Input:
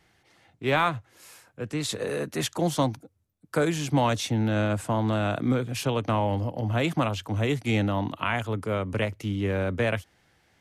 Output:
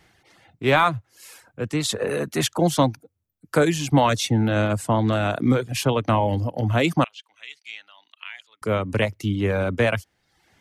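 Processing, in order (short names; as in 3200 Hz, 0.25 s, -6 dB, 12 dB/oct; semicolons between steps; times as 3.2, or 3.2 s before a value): reverb removal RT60 0.65 s; 7.04–8.62 ladder band-pass 3400 Hz, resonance 25%; gain +6 dB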